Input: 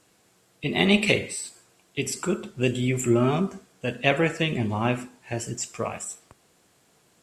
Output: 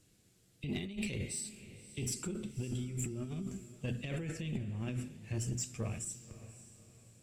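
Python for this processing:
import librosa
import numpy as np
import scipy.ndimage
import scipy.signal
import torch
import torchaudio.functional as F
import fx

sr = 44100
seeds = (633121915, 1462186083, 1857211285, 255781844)

p1 = fx.tone_stack(x, sr, knobs='10-0-1')
p2 = fx.hum_notches(p1, sr, base_hz=60, count=4)
p3 = fx.over_compress(p2, sr, threshold_db=-47.0, ratio=-1.0)
p4 = 10.0 ** (-37.0 / 20.0) * np.tanh(p3 / 10.0 ** (-37.0 / 20.0))
p5 = p4 + fx.echo_diffused(p4, sr, ms=565, feedback_pct=41, wet_db=-15.0, dry=0)
y = p5 * librosa.db_to_amplitude(10.0)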